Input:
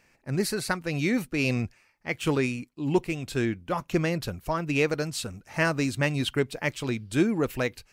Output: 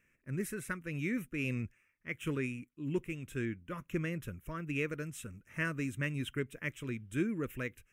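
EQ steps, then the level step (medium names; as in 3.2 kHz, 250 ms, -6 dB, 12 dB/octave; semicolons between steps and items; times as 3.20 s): static phaser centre 1.9 kHz, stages 4; -8.0 dB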